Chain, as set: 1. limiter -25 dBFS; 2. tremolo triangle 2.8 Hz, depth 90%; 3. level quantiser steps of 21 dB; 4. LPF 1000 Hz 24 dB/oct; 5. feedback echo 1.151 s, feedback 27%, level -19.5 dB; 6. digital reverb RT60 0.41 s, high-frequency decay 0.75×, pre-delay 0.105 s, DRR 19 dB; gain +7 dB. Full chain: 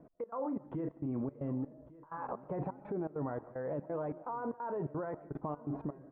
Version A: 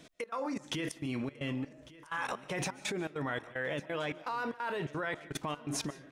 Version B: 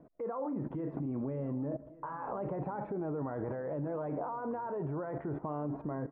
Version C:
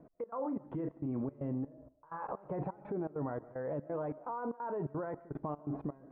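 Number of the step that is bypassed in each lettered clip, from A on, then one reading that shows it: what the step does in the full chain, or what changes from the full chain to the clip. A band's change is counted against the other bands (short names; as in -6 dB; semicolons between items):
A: 4, 2 kHz band +17.5 dB; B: 2, momentary loudness spread change -2 LU; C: 5, echo-to-direct -16.0 dB to -19.0 dB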